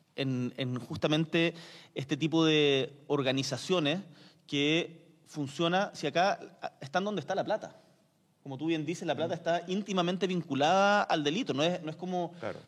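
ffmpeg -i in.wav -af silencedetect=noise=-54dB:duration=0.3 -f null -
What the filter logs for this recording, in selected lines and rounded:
silence_start: 7.92
silence_end: 8.46 | silence_duration: 0.53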